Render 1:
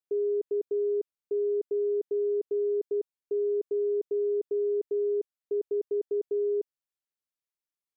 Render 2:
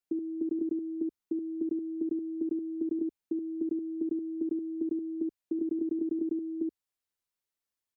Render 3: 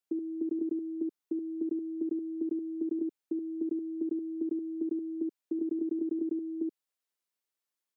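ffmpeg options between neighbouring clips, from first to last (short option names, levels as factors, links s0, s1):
-filter_complex "[0:a]afreqshift=-87,asplit=2[s0][s1];[s1]aecho=0:1:11|76:0.501|0.562[s2];[s0][s2]amix=inputs=2:normalize=0,volume=1.12"
-af "highpass=220"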